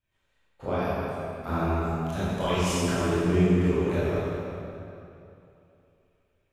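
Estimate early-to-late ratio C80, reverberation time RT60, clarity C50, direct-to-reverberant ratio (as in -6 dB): -3.0 dB, 2.9 s, -5.5 dB, -12.0 dB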